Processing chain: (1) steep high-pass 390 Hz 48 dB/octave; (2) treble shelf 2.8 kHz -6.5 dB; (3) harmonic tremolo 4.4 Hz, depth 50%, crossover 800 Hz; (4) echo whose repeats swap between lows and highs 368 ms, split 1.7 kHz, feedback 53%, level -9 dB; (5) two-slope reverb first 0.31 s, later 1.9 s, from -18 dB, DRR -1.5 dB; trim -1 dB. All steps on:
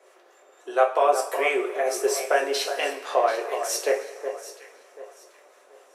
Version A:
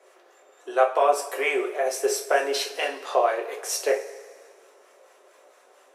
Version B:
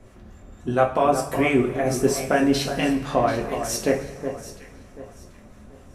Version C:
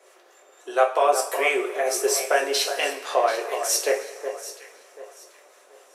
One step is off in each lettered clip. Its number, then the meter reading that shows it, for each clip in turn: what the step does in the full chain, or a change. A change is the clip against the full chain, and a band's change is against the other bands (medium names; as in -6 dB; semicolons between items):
4, momentary loudness spread change -4 LU; 1, 250 Hz band +15.5 dB; 2, 8 kHz band +5.0 dB